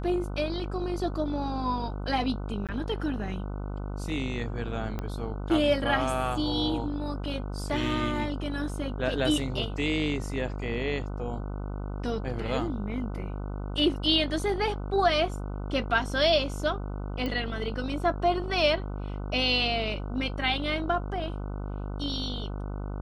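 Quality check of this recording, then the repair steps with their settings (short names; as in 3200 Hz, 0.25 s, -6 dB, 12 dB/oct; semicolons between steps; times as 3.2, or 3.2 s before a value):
buzz 50 Hz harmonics 30 -34 dBFS
2.67–2.69 gap 17 ms
4.99 pop -20 dBFS
17.26 pop -20 dBFS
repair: de-click; de-hum 50 Hz, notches 30; interpolate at 2.67, 17 ms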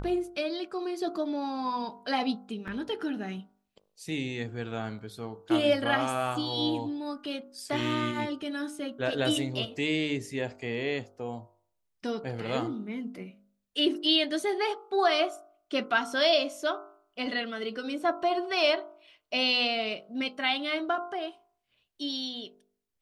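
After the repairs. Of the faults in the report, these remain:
4.99 pop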